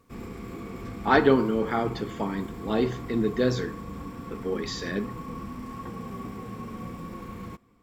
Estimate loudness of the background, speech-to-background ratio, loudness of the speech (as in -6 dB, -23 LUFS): -38.5 LUFS, 11.5 dB, -27.0 LUFS